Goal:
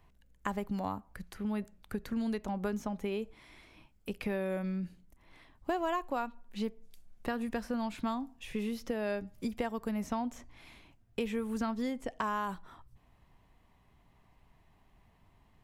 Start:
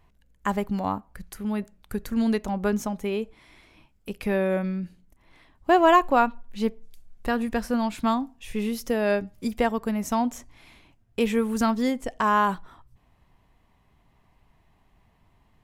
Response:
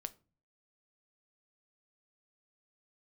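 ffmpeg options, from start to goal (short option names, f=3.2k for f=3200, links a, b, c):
-filter_complex "[0:a]acrossover=split=92|4600[a][b][c];[a]acompressor=threshold=-47dB:ratio=4[d];[b]acompressor=threshold=-30dB:ratio=4[e];[c]acompressor=threshold=-56dB:ratio=4[f];[d][e][f]amix=inputs=3:normalize=0,volume=-2.5dB"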